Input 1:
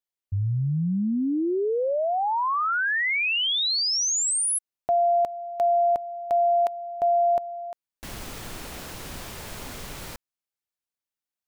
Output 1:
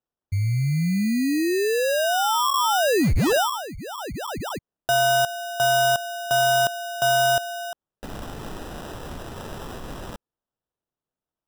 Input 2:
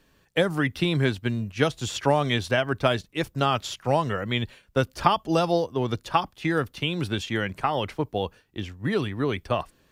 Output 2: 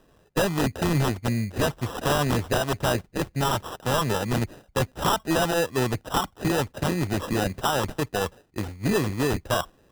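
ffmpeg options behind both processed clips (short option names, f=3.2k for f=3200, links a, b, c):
-af "highshelf=f=3.3k:t=q:w=3:g=-7.5,acrusher=samples=20:mix=1:aa=0.000001,aeval=exprs='0.119*(abs(mod(val(0)/0.119+3,4)-2)-1)':c=same,volume=2.5dB"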